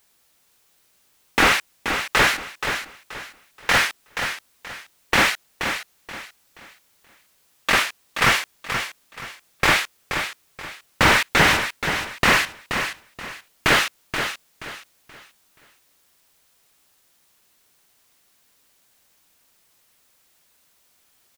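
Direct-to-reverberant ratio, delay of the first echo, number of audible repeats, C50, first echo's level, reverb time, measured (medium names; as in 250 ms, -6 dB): no reverb, 478 ms, 3, no reverb, -8.0 dB, no reverb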